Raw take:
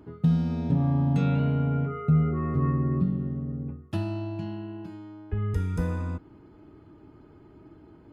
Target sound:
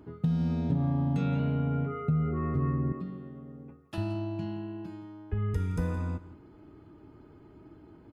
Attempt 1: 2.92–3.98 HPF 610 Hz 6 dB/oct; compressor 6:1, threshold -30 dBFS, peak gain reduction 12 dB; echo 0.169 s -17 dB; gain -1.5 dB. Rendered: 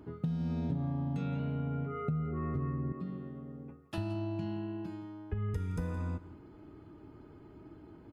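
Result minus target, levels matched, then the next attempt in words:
compressor: peak gain reduction +6.5 dB
2.92–3.98 HPF 610 Hz 6 dB/oct; compressor 6:1, threshold -22 dBFS, peak gain reduction 5.5 dB; echo 0.169 s -17 dB; gain -1.5 dB

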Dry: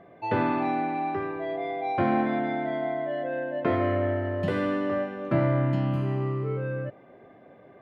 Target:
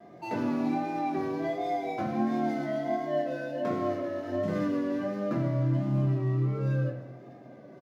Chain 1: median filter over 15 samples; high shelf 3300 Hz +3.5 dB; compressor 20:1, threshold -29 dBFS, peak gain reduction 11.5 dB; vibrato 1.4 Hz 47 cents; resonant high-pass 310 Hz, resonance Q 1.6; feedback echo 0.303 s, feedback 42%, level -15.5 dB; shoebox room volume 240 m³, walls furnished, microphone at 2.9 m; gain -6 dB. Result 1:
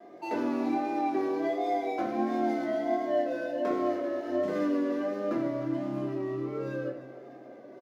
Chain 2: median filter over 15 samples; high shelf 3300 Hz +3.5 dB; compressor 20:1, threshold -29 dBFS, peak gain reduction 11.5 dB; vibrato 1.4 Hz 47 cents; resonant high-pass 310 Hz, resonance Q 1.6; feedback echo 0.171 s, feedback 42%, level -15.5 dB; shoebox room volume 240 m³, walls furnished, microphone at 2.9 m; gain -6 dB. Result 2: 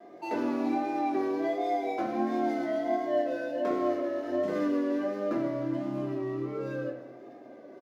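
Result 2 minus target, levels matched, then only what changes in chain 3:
125 Hz band -15.0 dB
change: resonant high-pass 150 Hz, resonance Q 1.6

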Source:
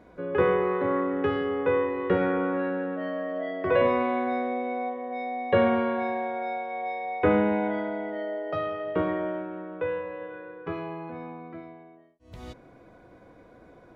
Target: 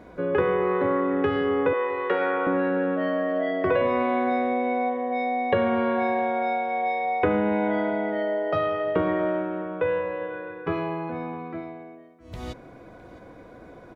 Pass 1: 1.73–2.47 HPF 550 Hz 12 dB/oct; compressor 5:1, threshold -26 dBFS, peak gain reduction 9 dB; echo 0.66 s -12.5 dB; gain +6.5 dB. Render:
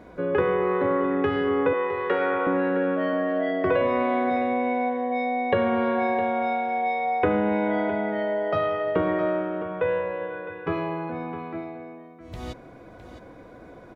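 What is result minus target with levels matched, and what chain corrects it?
echo-to-direct +9 dB
1.73–2.47 HPF 550 Hz 12 dB/oct; compressor 5:1, threshold -26 dBFS, peak gain reduction 9 dB; echo 0.66 s -21.5 dB; gain +6.5 dB

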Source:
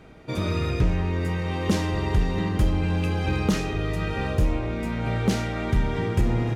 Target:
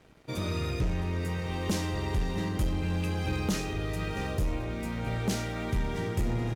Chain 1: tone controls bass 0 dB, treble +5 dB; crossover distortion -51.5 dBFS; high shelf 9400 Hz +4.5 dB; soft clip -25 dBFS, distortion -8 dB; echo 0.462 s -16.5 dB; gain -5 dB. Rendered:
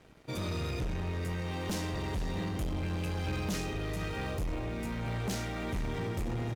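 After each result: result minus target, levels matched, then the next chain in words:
soft clip: distortion +10 dB; echo 0.203 s early
tone controls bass 0 dB, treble +5 dB; crossover distortion -51.5 dBFS; high shelf 9400 Hz +4.5 dB; soft clip -15.5 dBFS, distortion -18 dB; echo 0.462 s -16.5 dB; gain -5 dB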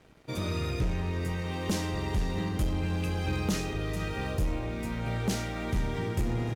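echo 0.203 s early
tone controls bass 0 dB, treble +5 dB; crossover distortion -51.5 dBFS; high shelf 9400 Hz +4.5 dB; soft clip -15.5 dBFS, distortion -18 dB; echo 0.665 s -16.5 dB; gain -5 dB

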